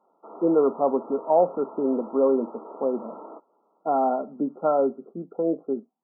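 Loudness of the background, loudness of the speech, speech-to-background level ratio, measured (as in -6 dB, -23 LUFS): -42.5 LUFS, -25.0 LUFS, 17.5 dB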